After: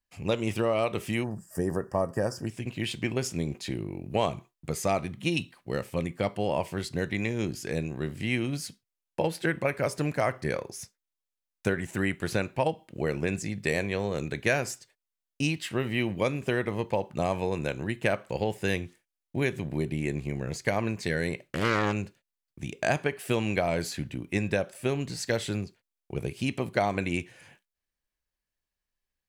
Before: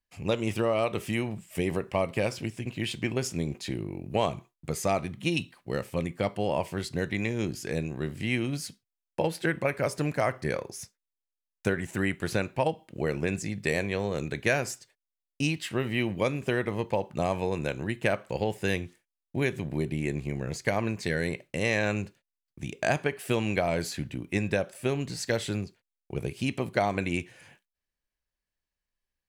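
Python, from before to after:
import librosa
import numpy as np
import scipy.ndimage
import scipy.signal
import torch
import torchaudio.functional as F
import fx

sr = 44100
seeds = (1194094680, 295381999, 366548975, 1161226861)

y = fx.spec_box(x, sr, start_s=1.24, length_s=1.23, low_hz=1900.0, high_hz=4600.0, gain_db=-22)
y = fx.doppler_dist(y, sr, depth_ms=0.4, at=(21.44, 21.93))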